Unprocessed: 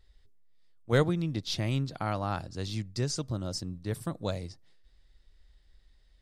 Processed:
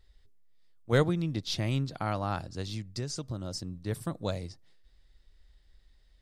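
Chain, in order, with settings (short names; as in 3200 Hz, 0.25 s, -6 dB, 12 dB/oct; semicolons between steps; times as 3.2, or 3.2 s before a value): 2.61–3.81 compressor 3:1, threshold -33 dBFS, peak gain reduction 6 dB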